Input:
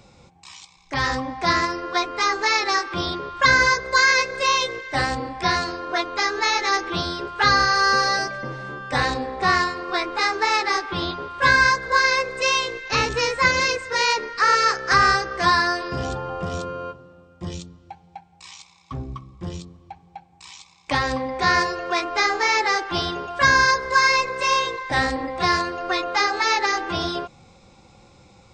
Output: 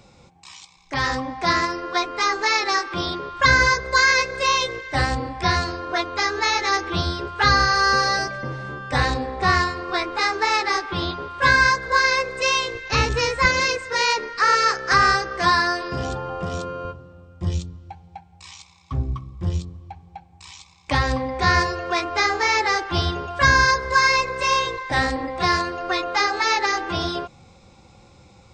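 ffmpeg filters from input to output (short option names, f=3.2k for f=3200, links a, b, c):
-af "asetnsamples=n=441:p=0,asendcmd='3.4 equalizer g 11;10.03 equalizer g 5;12.75 equalizer g 13;13.45 equalizer g 1;16.85 equalizer g 13;24.77 equalizer g 4',equalizer=f=78:t=o:w=1.2:g=-0.5"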